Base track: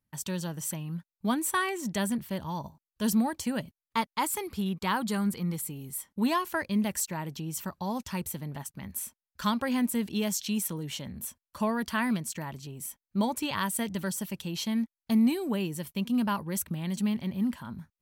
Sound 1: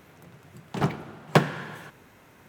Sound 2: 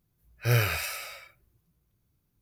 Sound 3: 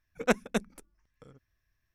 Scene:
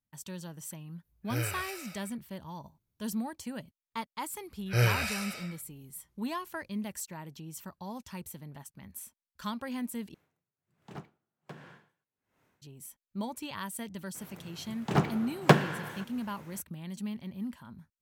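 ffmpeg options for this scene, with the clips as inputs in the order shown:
-filter_complex "[2:a]asplit=2[a][b];[1:a]asplit=2[c][d];[0:a]volume=-8.5dB[e];[b]lowpass=11k[f];[c]aeval=exprs='val(0)*pow(10,-29*(0.5-0.5*cos(2*PI*1.3*n/s))/20)':c=same[g];[e]asplit=2[h][i];[h]atrim=end=10.144[j];[g]atrim=end=2.48,asetpts=PTS-STARTPTS,volume=-16.5dB[k];[i]atrim=start=12.616[l];[a]atrim=end=2.41,asetpts=PTS-STARTPTS,volume=-9.5dB,afade=t=in:d=0.004:c=hsin,afade=t=out:st=2.406:d=0.004:c=hsin,adelay=850[m];[f]atrim=end=2.41,asetpts=PTS-STARTPTS,volume=-1.5dB,afade=t=in:d=0.004:c=hsin,afade=t=out:st=2.406:d=0.004:c=hsin,adelay=4280[n];[d]atrim=end=2.48,asetpts=PTS-STARTPTS,volume=-0.5dB,afade=t=in:d=0.02,afade=t=out:st=2.46:d=0.02,adelay=14140[o];[j][k]acrossfade=d=0.004:c1=hsin:c2=hsin[p];[p][l]acrossfade=d=0.004:c1=hsin:c2=hsin[q];[q][m][n][o]amix=inputs=4:normalize=0"

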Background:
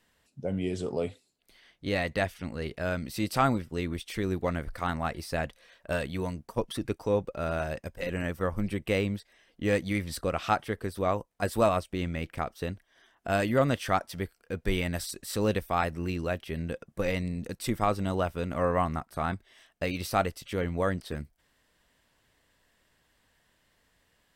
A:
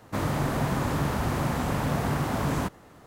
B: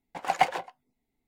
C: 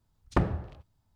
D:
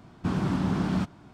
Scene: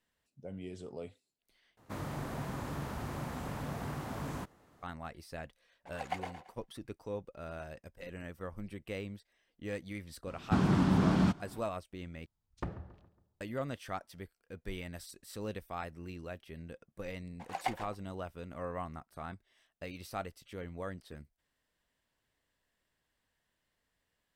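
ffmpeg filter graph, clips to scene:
-filter_complex "[2:a]asplit=2[a][b];[0:a]volume=-13dB[c];[a]aecho=1:1:112|224|336|448:0.473|0.161|0.0547|0.0186[d];[3:a]asplit=2[e][f];[f]adelay=138,lowpass=f=2.5k:p=1,volume=-17dB,asplit=2[g][h];[h]adelay=138,lowpass=f=2.5k:p=1,volume=0.5,asplit=2[i][j];[j]adelay=138,lowpass=f=2.5k:p=1,volume=0.5,asplit=2[k][l];[l]adelay=138,lowpass=f=2.5k:p=1,volume=0.5[m];[e][g][i][k][m]amix=inputs=5:normalize=0[n];[b]bandreject=f=1.4k:w=22[o];[c]asplit=3[p][q][r];[p]atrim=end=1.774[s];[1:a]atrim=end=3.06,asetpts=PTS-STARTPTS,volume=-12.5dB[t];[q]atrim=start=4.826:end=12.264[u];[n]atrim=end=1.15,asetpts=PTS-STARTPTS,volume=-14dB[v];[r]atrim=start=13.406[w];[d]atrim=end=1.27,asetpts=PTS-STARTPTS,volume=-15.5dB,afade=t=in:d=0.004:c=hsin,afade=t=out:st=1.266:d=0.004:c=hsin,adelay=5710[x];[4:a]atrim=end=1.33,asetpts=PTS-STARTPTS,volume=-0.5dB,afade=t=in:d=0.004:c=hsin,afade=t=out:st=1.326:d=0.004:c=hsin,adelay=10270[y];[o]atrim=end=1.27,asetpts=PTS-STARTPTS,volume=-12dB,afade=t=in:d=0.004:c=hsin,afade=t=out:st=1.266:d=0.004:c=hsin,adelay=17250[z];[s][t]acrossfade=d=0.004:c1=hsin:c2=hsin[aa];[aa][u]acrossfade=d=0.004:c1=hsin:c2=hsin[ab];[ab][v]acrossfade=d=0.004:c1=hsin:c2=hsin[ac];[ac][w]acrossfade=d=0.004:c1=hsin:c2=hsin[ad];[ad][x][y][z]amix=inputs=4:normalize=0"

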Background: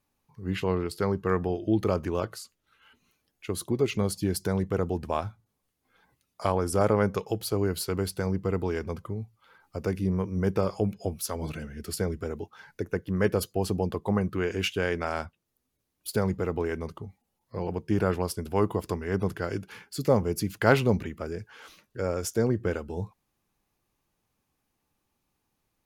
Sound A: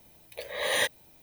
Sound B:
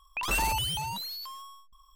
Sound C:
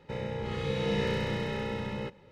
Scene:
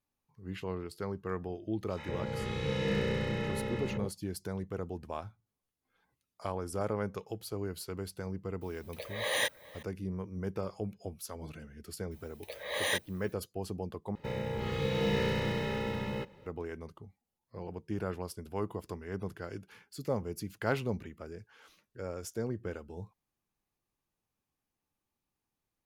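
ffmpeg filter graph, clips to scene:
-filter_complex "[3:a]asplit=2[a][b];[1:a]asplit=2[c][d];[0:a]volume=-10.5dB[e];[a]acrossover=split=820|3800[f][g][h];[g]adelay=70[i];[f]adelay=180[j];[j][i][h]amix=inputs=3:normalize=0[k];[c]asplit=2[l][m];[m]adelay=414,volume=-19dB,highshelf=f=4k:g=-9.32[n];[l][n]amix=inputs=2:normalize=0[o];[b]acrusher=bits=8:mode=log:mix=0:aa=0.000001[p];[e]asplit=2[q][r];[q]atrim=end=14.154[s];[p]atrim=end=2.31,asetpts=PTS-STARTPTS,volume=-0.5dB[t];[r]atrim=start=16.456[u];[k]atrim=end=2.31,asetpts=PTS-STARTPTS,volume=-1dB,afade=t=in:d=0.004:c=hsin,afade=t=out:st=2.306:d=0.004:c=hsin,adelay=1810[v];[o]atrim=end=1.22,asetpts=PTS-STARTPTS,volume=-4dB,afade=t=in:d=0.004:c=hsin,afade=t=out:st=1.216:d=0.004:c=hsin,adelay=8610[w];[d]atrim=end=1.22,asetpts=PTS-STARTPTS,volume=-5dB,afade=t=in:d=0.004:c=hsin,afade=t=out:st=1.216:d=0.004:c=hsin,adelay=12110[x];[s][t]acrossfade=d=0.004:c1=hsin:c2=hsin[y];[y][u]acrossfade=d=0.004:c1=hsin:c2=hsin[z];[z][v][w][x]amix=inputs=4:normalize=0"

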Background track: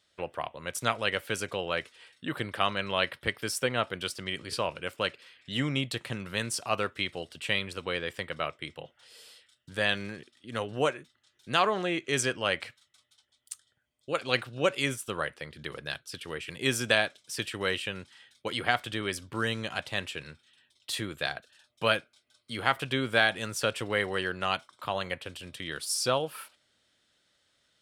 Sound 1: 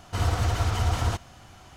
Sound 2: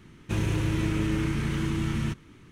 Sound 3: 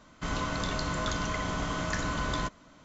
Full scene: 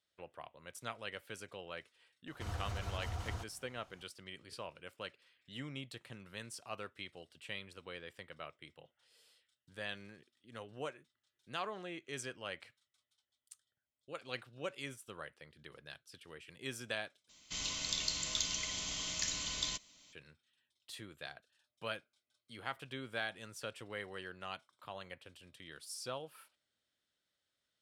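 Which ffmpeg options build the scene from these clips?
-filter_complex "[0:a]volume=-15.5dB[a];[3:a]aexciter=amount=6.9:drive=8.1:freq=2.2k[b];[a]asplit=2[c][d];[c]atrim=end=17.294[e];[b]atrim=end=2.84,asetpts=PTS-STARTPTS,volume=-18dB[f];[d]atrim=start=20.126[g];[1:a]atrim=end=1.76,asetpts=PTS-STARTPTS,volume=-16.5dB,afade=t=in:d=0.004:c=hsin,afade=t=out:st=1.756:d=0.004:c=hsin,adelay=2270[h];[e][f]acrossfade=d=0.004:c1=hsin:c2=hsin[i];[i][g]acrossfade=d=0.004:c1=hsin:c2=hsin[j];[j][h]amix=inputs=2:normalize=0"

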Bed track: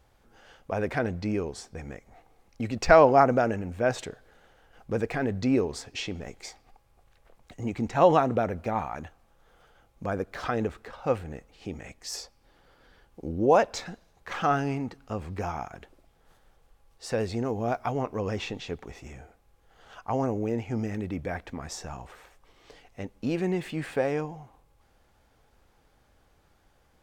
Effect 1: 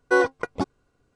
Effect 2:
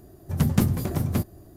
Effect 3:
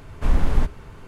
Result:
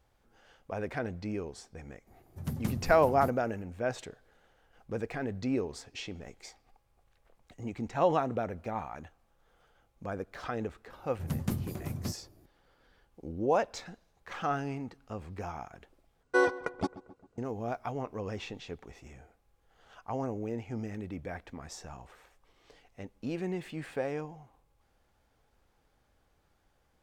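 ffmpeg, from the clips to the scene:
-filter_complex "[2:a]asplit=2[a][b];[0:a]volume=-7dB[c];[1:a]asplit=2[d][e];[e]adelay=133,lowpass=f=1.9k:p=1,volume=-16.5dB,asplit=2[f][g];[g]adelay=133,lowpass=f=1.9k:p=1,volume=0.55,asplit=2[h][i];[i]adelay=133,lowpass=f=1.9k:p=1,volume=0.55,asplit=2[j][k];[k]adelay=133,lowpass=f=1.9k:p=1,volume=0.55,asplit=2[l][m];[m]adelay=133,lowpass=f=1.9k:p=1,volume=0.55[n];[d][f][h][j][l][n]amix=inputs=6:normalize=0[o];[c]asplit=2[p][q];[p]atrim=end=16.234[r];[o]atrim=end=1.15,asetpts=PTS-STARTPTS,volume=-6dB[s];[q]atrim=start=17.376[t];[a]atrim=end=1.56,asetpts=PTS-STARTPTS,volume=-13.5dB,afade=t=in:d=0.004:c=hsin,afade=t=out:st=1.556:d=0.004:c=hsin,adelay=2070[u];[b]atrim=end=1.56,asetpts=PTS-STARTPTS,volume=-11.5dB,afade=t=in:d=0.004:c=hsin,afade=t=out:st=1.556:d=0.004:c=hsin,adelay=480690S[v];[r][s]acrossfade=d=0.004:c1=hsin:c2=hsin[w];[w][t]acrossfade=d=0.004:c1=hsin:c2=hsin[x];[x][u][v]amix=inputs=3:normalize=0"

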